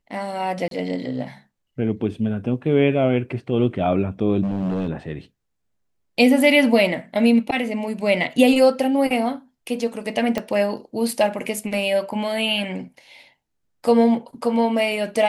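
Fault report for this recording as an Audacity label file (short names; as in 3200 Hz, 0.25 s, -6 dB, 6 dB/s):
0.680000	0.710000	gap 32 ms
4.420000	4.890000	clipped -20 dBFS
10.380000	10.380000	pop -10 dBFS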